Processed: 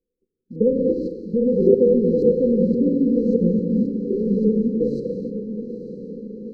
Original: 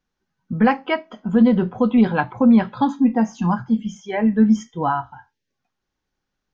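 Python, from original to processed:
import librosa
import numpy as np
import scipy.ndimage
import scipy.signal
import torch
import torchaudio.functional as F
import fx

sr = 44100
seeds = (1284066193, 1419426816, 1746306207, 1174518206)

p1 = fx.spec_trails(x, sr, decay_s=1.04)
p2 = fx.sample_hold(p1, sr, seeds[0], rate_hz=2600.0, jitter_pct=20)
p3 = p1 + F.gain(torch.from_numpy(p2), -5.0).numpy()
p4 = fx.graphic_eq_10(p3, sr, hz=(125, 500, 1000, 2000), db=(-7, 7, -5, 10))
p5 = fx.level_steps(p4, sr, step_db=17)
p6 = 10.0 ** (-13.5 / 20.0) * np.tanh(p5 / 10.0 ** (-13.5 / 20.0))
p7 = fx.filter_lfo_lowpass(p6, sr, shape='saw_up', hz=1.8, low_hz=420.0, high_hz=2200.0, q=3.3)
p8 = fx.brickwall_bandstop(p7, sr, low_hz=540.0, high_hz=3900.0)
p9 = fx.peak_eq(p8, sr, hz=2600.0, db=-13.0, octaves=0.47)
p10 = fx.echo_diffused(p9, sr, ms=917, feedback_pct=57, wet_db=-11.0)
y = fx.rev_gated(p10, sr, seeds[1], gate_ms=330, shape='flat', drr_db=5.5)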